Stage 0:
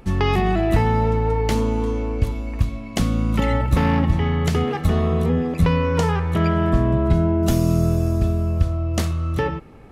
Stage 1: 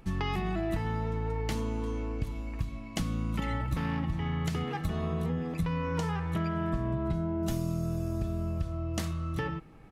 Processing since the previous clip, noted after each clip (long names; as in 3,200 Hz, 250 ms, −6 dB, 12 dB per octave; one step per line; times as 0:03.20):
parametric band 500 Hz −5 dB 0.81 octaves
comb filter 6.2 ms, depth 33%
downward compressor, threshold −19 dBFS, peak gain reduction 7.5 dB
level −8 dB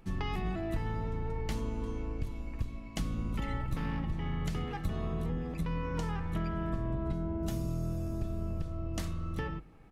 sub-octave generator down 2 octaves, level −1 dB
level −4.5 dB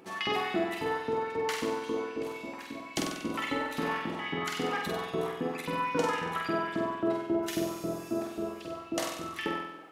auto-filter high-pass saw up 3.7 Hz 260–4,100 Hz
flutter between parallel walls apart 8.1 metres, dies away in 0.85 s
level +6 dB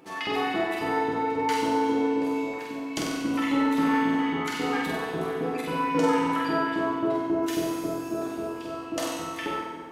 feedback delay network reverb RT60 2.2 s, low-frequency decay 1.1×, high-frequency decay 0.55×, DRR −0.5 dB